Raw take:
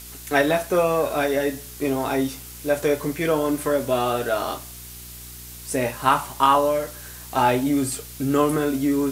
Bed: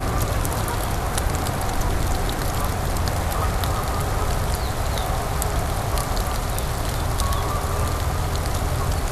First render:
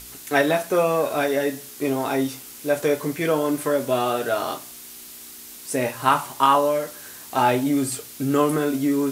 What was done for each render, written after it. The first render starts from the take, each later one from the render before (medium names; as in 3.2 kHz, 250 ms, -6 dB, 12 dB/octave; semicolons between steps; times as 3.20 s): de-hum 60 Hz, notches 3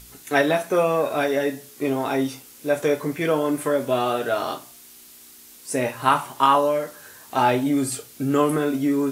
noise print and reduce 6 dB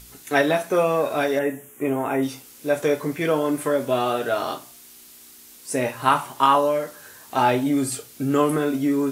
1.39–2.23 s: Butterworth band-stop 4.5 kHz, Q 1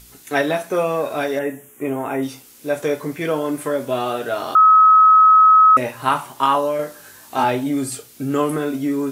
4.55–5.77 s: bleep 1.28 kHz -7 dBFS; 6.77–7.44 s: doubling 20 ms -3 dB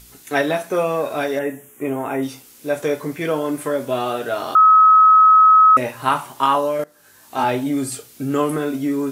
6.84–7.55 s: fade in, from -21.5 dB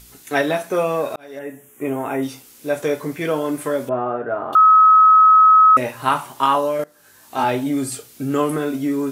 1.16–1.87 s: fade in; 3.89–4.53 s: low-pass 1.6 kHz 24 dB/octave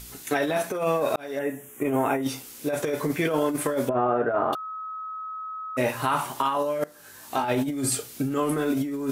peak limiter -15.5 dBFS, peak gain reduction 10 dB; compressor with a negative ratio -25 dBFS, ratio -0.5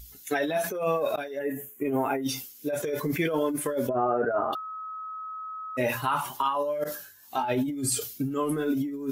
expander on every frequency bin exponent 1.5; decay stretcher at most 89 dB/s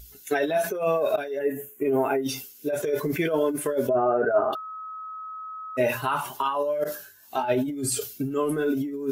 small resonant body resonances 410/630/1500/2700 Hz, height 8 dB, ringing for 50 ms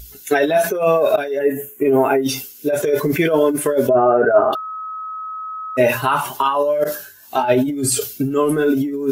trim +8.5 dB